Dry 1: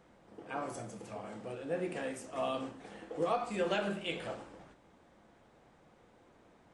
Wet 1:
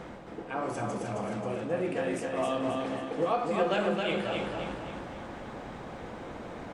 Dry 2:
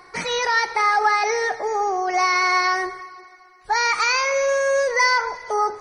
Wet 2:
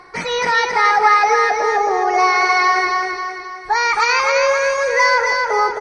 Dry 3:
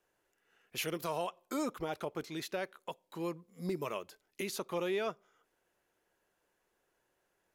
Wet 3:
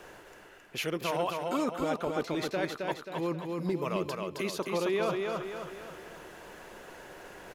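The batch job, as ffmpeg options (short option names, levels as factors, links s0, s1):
-af "lowpass=f=3900:p=1,areverse,acompressor=mode=upward:threshold=0.0251:ratio=2.5,areverse,aecho=1:1:267|534|801|1068|1335|1602:0.668|0.314|0.148|0.0694|0.0326|0.0153,volume=1.58"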